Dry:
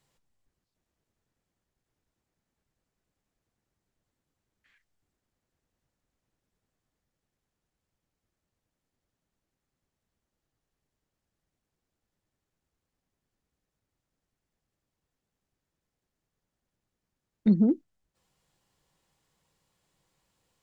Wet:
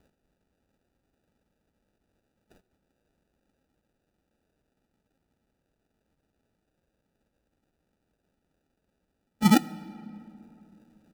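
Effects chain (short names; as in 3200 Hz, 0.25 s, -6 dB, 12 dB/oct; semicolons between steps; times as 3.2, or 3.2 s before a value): HPF 56 Hz 6 dB/oct; comb 4.1 ms, depth 68%; in parallel at +1 dB: negative-ratio compressor -22 dBFS, ratio -0.5; on the sum: plain phase-vocoder stretch 0.54×; sample-and-hold 41×; on a send at -18.5 dB: reverb RT60 2.9 s, pre-delay 41 ms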